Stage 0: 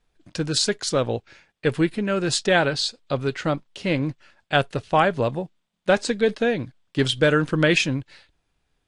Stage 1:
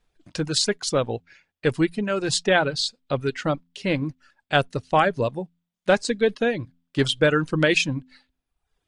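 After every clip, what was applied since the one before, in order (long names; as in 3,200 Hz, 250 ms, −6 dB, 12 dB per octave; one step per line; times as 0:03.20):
hum removal 85.77 Hz, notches 3
reverb reduction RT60 0.82 s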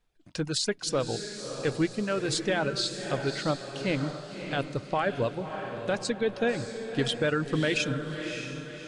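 brickwall limiter −13 dBFS, peak gain reduction 9.5 dB
on a send: feedback delay with all-pass diffusion 597 ms, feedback 45%, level −7.5 dB
on the sum: level −4.5 dB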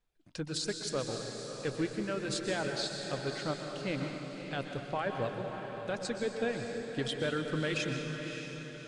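dense smooth reverb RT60 1.9 s, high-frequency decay 0.9×, pre-delay 110 ms, DRR 5 dB
level −7 dB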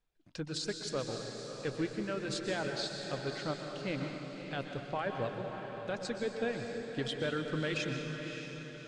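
low-pass filter 7,300 Hz 12 dB per octave
level −1.5 dB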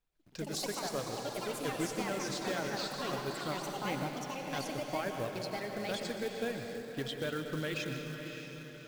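floating-point word with a short mantissa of 2 bits
delay with pitch and tempo change per echo 124 ms, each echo +5 semitones, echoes 3
level −2 dB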